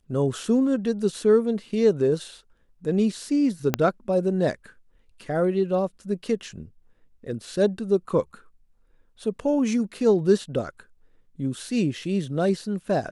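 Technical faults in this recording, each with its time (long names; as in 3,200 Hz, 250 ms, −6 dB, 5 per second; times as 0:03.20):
0:03.74: click −6 dBFS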